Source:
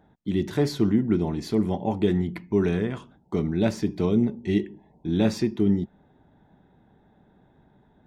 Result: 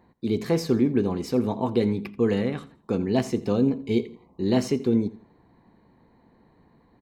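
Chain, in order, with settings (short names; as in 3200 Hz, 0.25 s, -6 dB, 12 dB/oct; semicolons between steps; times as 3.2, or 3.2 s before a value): varispeed +15%; feedback echo 84 ms, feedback 32%, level -18.5 dB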